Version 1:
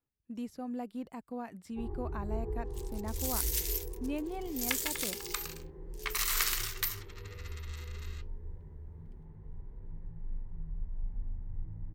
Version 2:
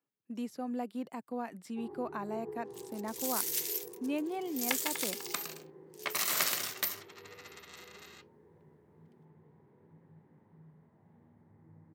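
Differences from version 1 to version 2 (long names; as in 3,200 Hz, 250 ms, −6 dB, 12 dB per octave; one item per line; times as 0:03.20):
speech +3.5 dB
second sound: remove high-pass filter 990 Hz 24 dB per octave
master: add Bessel high-pass filter 220 Hz, order 8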